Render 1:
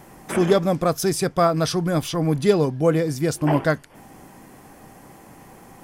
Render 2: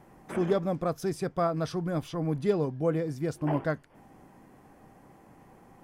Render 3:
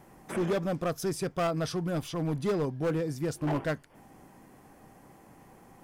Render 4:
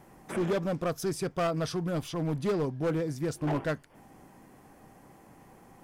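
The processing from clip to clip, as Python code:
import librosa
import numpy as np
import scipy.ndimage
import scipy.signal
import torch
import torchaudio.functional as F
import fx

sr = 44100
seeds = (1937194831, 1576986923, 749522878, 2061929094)

y1 = fx.high_shelf(x, sr, hz=2900.0, db=-11.0)
y1 = y1 * librosa.db_to_amplitude(-8.5)
y2 = np.clip(y1, -10.0 ** (-24.0 / 20.0), 10.0 ** (-24.0 / 20.0))
y2 = fx.high_shelf(y2, sr, hz=3500.0, db=7.0)
y3 = fx.doppler_dist(y2, sr, depth_ms=0.12)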